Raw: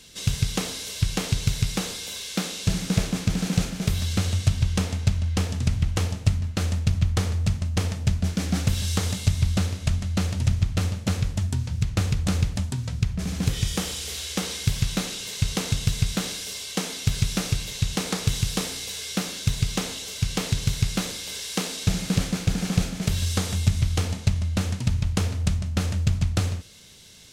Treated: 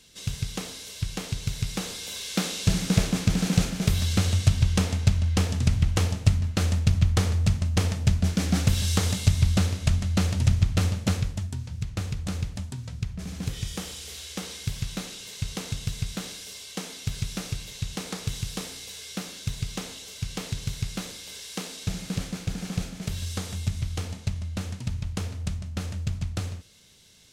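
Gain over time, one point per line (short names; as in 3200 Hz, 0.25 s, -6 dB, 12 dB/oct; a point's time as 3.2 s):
1.41 s -6.5 dB
2.45 s +1 dB
11.05 s +1 dB
11.5 s -7 dB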